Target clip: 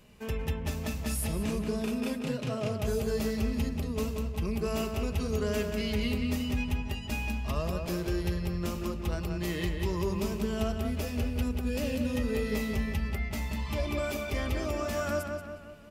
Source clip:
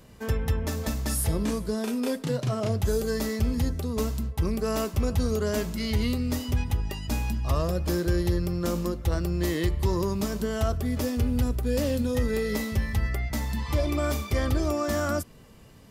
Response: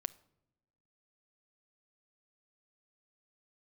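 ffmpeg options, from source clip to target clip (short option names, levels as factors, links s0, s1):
-filter_complex "[0:a]equalizer=f=2600:t=o:w=0.43:g=9.5,aecho=1:1:4.8:0.32,asplit=2[s0][s1];[s1]adelay=182,lowpass=f=3600:p=1,volume=0.596,asplit=2[s2][s3];[s3]adelay=182,lowpass=f=3600:p=1,volume=0.51,asplit=2[s4][s5];[s5]adelay=182,lowpass=f=3600:p=1,volume=0.51,asplit=2[s6][s7];[s7]adelay=182,lowpass=f=3600:p=1,volume=0.51,asplit=2[s8][s9];[s9]adelay=182,lowpass=f=3600:p=1,volume=0.51,asplit=2[s10][s11];[s11]adelay=182,lowpass=f=3600:p=1,volume=0.51,asplit=2[s12][s13];[s13]adelay=182,lowpass=f=3600:p=1,volume=0.51[s14];[s0][s2][s4][s6][s8][s10][s12][s14]amix=inputs=8:normalize=0,volume=0.473"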